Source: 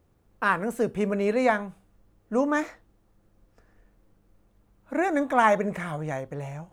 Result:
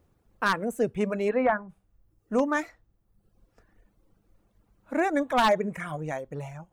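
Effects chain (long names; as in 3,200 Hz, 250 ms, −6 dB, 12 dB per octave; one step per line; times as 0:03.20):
wave folding −14 dBFS
reverb reduction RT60 0.89 s
0:01.28–0:01.68: low-pass filter 3,200 Hz → 1,300 Hz 24 dB per octave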